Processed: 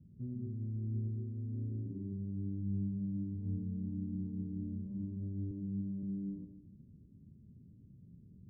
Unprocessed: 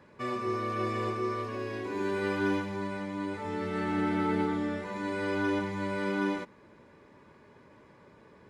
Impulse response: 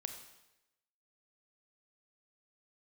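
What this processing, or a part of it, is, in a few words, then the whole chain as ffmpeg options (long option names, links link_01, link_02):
club heard from the street: -filter_complex "[0:a]alimiter=level_in=2.5dB:limit=-24dB:level=0:latency=1:release=239,volume=-2.5dB,lowpass=frequency=190:width=0.5412,lowpass=frequency=190:width=1.3066[link_01];[1:a]atrim=start_sample=2205[link_02];[link_01][link_02]afir=irnorm=-1:irlink=0,asettb=1/sr,asplit=3[link_03][link_04][link_05];[link_03]atrim=end=5.514[link_06];[link_04]atrim=start=5.51:end=6.03,asetpts=PTS-STARTPTS,afade=type=in:duration=0.004:curve=qsin,afade=type=out:start_time=0.516:duration=0.004:curve=qsin,highpass=150[link_07];[link_05]atrim=start=6.026[link_08];[link_06][link_07]acrossfade=duration=0.004:curve1=hsin:curve2=qsin[link_09];[link_09][link_08]acrossfade=duration=0.004:curve1=qsin:curve2=hsin,volume=9dB"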